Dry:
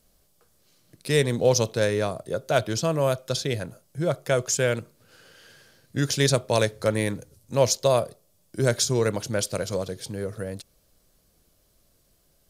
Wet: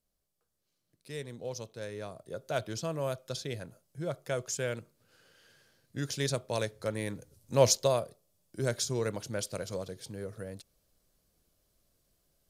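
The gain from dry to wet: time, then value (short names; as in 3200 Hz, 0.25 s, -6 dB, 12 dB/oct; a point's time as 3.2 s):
1.72 s -19 dB
2.45 s -10.5 dB
7 s -10.5 dB
7.7 s -1.5 dB
7.99 s -9 dB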